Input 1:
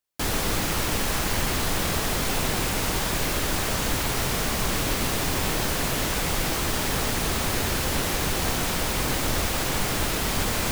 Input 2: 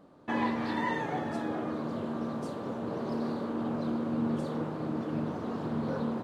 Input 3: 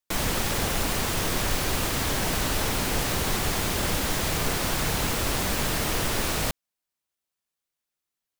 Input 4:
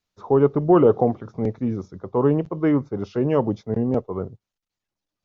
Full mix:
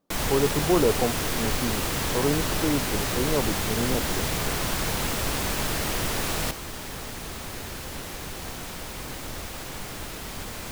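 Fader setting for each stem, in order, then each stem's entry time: -10.5 dB, -17.5 dB, -1.5 dB, -6.5 dB; 0.00 s, 0.00 s, 0.00 s, 0.00 s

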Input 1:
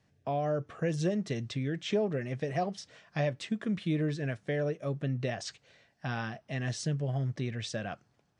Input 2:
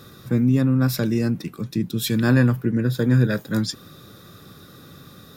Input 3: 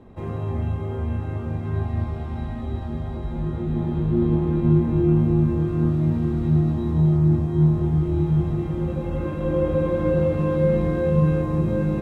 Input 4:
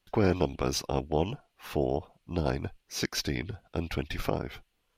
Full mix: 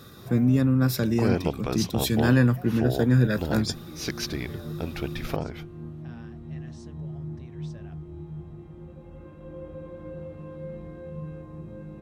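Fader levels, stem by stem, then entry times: -16.0 dB, -2.5 dB, -18.5 dB, -0.5 dB; 0.00 s, 0.00 s, 0.00 s, 1.05 s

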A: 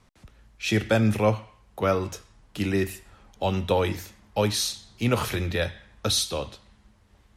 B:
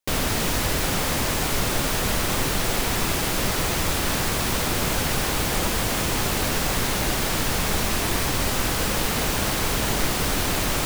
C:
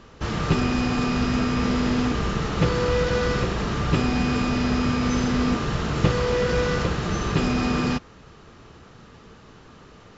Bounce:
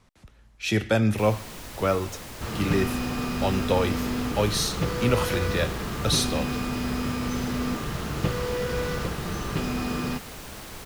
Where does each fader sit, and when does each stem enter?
-0.5 dB, -16.5 dB, -6.0 dB; 0.00 s, 1.10 s, 2.20 s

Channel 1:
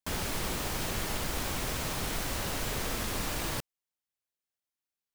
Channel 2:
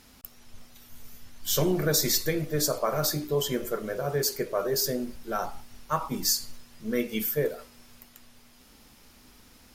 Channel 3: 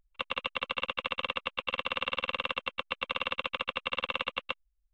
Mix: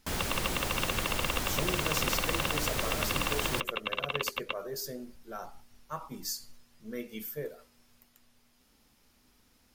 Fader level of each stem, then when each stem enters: 0.0 dB, -11.0 dB, -1.0 dB; 0.00 s, 0.00 s, 0.00 s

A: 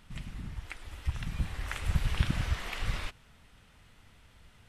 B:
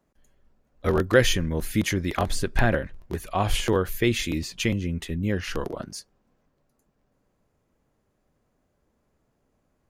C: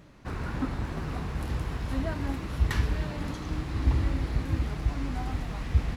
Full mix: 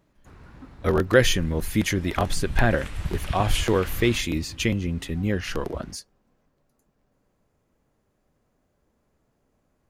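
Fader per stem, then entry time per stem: -1.0 dB, +1.0 dB, -14.5 dB; 1.10 s, 0.00 s, 0.00 s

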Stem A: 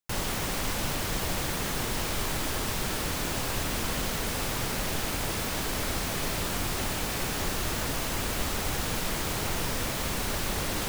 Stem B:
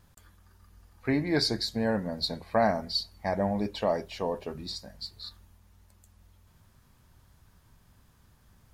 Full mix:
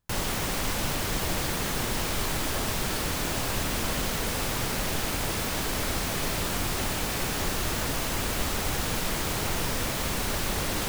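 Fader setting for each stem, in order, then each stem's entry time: +1.5 dB, -18.5 dB; 0.00 s, 0.00 s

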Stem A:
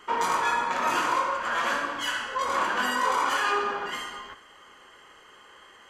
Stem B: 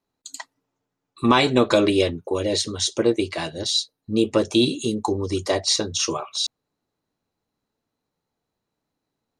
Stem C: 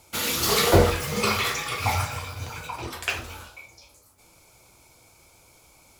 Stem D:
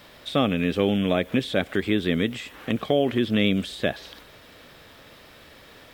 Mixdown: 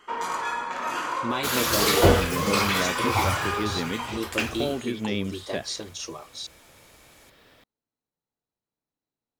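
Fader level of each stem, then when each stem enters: -4.0 dB, -12.0 dB, -0.5 dB, -7.5 dB; 0.00 s, 0.00 s, 1.30 s, 1.70 s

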